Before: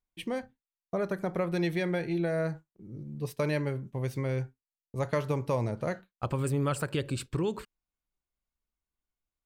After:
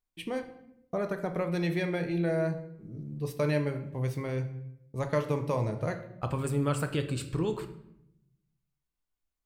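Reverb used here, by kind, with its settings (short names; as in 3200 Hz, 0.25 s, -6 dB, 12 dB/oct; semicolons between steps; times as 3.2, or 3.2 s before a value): shoebox room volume 220 m³, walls mixed, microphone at 0.47 m; gain -1 dB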